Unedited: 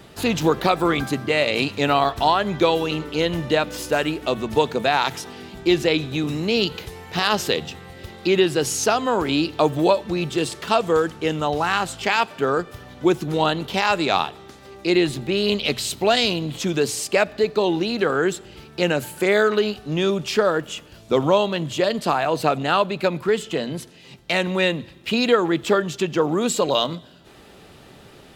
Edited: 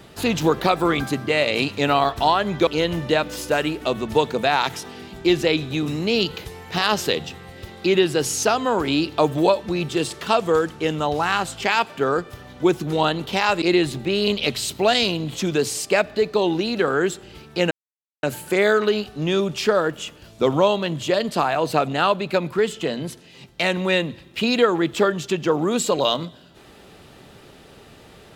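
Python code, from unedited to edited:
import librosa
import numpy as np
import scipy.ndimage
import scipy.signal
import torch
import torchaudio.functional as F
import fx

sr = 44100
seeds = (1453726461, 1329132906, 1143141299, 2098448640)

y = fx.edit(x, sr, fx.cut(start_s=2.67, length_s=0.41),
    fx.cut(start_s=14.03, length_s=0.81),
    fx.insert_silence(at_s=18.93, length_s=0.52), tone=tone)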